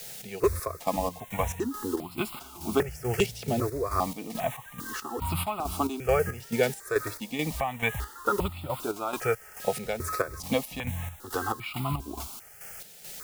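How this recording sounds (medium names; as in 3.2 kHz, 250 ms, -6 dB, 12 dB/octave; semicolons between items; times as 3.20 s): a quantiser's noise floor 8-bit, dither triangular; chopped level 2.3 Hz, depth 60%, duty 50%; notches that jump at a steady rate 2.5 Hz 300–1700 Hz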